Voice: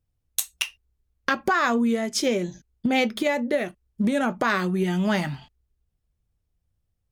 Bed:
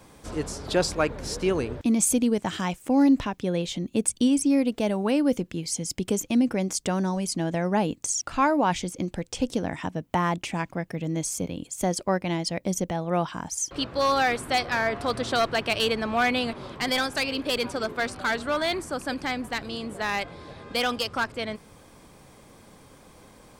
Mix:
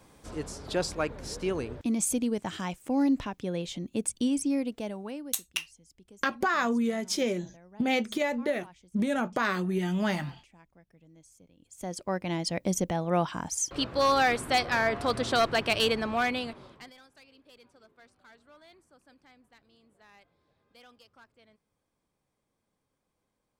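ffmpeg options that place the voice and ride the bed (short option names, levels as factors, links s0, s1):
-filter_complex "[0:a]adelay=4950,volume=0.562[s0];[1:a]volume=11.9,afade=t=out:st=4.46:d=0.95:silence=0.0749894,afade=t=in:st=11.58:d=1.05:silence=0.0421697,afade=t=out:st=15.85:d=1.08:silence=0.0354813[s1];[s0][s1]amix=inputs=2:normalize=0"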